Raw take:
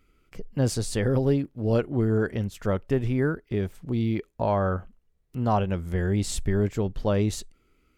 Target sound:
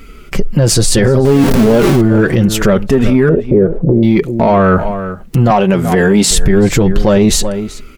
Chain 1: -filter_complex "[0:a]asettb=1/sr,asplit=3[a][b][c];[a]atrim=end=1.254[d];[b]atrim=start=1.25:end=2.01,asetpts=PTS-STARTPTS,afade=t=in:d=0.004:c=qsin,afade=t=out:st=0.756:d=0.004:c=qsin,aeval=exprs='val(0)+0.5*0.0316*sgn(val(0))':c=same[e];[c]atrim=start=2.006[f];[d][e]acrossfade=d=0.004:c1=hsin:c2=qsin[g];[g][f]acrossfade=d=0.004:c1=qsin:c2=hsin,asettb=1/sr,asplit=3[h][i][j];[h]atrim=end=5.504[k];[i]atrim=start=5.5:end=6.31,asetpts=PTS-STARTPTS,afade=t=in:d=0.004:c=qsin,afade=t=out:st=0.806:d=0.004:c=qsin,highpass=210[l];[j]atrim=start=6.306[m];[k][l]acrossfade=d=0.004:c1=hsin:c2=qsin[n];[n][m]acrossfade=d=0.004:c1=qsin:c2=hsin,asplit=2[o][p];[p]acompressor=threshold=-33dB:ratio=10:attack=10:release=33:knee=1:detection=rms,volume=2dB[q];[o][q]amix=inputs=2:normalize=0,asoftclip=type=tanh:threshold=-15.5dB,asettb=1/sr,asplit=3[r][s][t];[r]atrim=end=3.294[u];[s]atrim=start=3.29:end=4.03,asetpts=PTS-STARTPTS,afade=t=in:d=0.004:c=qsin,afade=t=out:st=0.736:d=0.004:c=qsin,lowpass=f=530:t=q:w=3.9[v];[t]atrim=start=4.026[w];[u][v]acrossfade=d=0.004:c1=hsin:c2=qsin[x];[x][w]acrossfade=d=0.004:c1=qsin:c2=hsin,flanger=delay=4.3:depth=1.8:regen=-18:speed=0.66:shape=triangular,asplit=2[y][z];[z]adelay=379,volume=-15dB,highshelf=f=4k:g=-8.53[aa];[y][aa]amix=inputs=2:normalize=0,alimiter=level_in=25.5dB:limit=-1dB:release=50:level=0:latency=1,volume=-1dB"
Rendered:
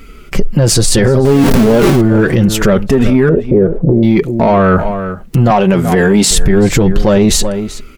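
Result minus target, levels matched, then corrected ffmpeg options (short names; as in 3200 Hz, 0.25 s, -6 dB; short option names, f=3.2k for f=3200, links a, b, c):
compressor: peak gain reduction -8.5 dB
-filter_complex "[0:a]asettb=1/sr,asplit=3[a][b][c];[a]atrim=end=1.254[d];[b]atrim=start=1.25:end=2.01,asetpts=PTS-STARTPTS,afade=t=in:d=0.004:c=qsin,afade=t=out:st=0.756:d=0.004:c=qsin,aeval=exprs='val(0)+0.5*0.0316*sgn(val(0))':c=same[e];[c]atrim=start=2.006[f];[d][e]acrossfade=d=0.004:c1=hsin:c2=qsin[g];[g][f]acrossfade=d=0.004:c1=qsin:c2=hsin,asettb=1/sr,asplit=3[h][i][j];[h]atrim=end=5.504[k];[i]atrim=start=5.5:end=6.31,asetpts=PTS-STARTPTS,afade=t=in:d=0.004:c=qsin,afade=t=out:st=0.806:d=0.004:c=qsin,highpass=210[l];[j]atrim=start=6.306[m];[k][l]acrossfade=d=0.004:c1=hsin:c2=qsin[n];[n][m]acrossfade=d=0.004:c1=qsin:c2=hsin,asplit=2[o][p];[p]acompressor=threshold=-42.5dB:ratio=10:attack=10:release=33:knee=1:detection=rms,volume=2dB[q];[o][q]amix=inputs=2:normalize=0,asoftclip=type=tanh:threshold=-15.5dB,asettb=1/sr,asplit=3[r][s][t];[r]atrim=end=3.294[u];[s]atrim=start=3.29:end=4.03,asetpts=PTS-STARTPTS,afade=t=in:d=0.004:c=qsin,afade=t=out:st=0.736:d=0.004:c=qsin,lowpass=f=530:t=q:w=3.9[v];[t]atrim=start=4.026[w];[u][v]acrossfade=d=0.004:c1=hsin:c2=qsin[x];[x][w]acrossfade=d=0.004:c1=qsin:c2=hsin,flanger=delay=4.3:depth=1.8:regen=-18:speed=0.66:shape=triangular,asplit=2[y][z];[z]adelay=379,volume=-15dB,highshelf=f=4k:g=-8.53[aa];[y][aa]amix=inputs=2:normalize=0,alimiter=level_in=25.5dB:limit=-1dB:release=50:level=0:latency=1,volume=-1dB"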